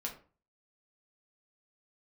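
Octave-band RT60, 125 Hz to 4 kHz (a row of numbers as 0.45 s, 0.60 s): 0.50 s, 0.40 s, 0.40 s, 0.40 s, 0.30 s, 0.25 s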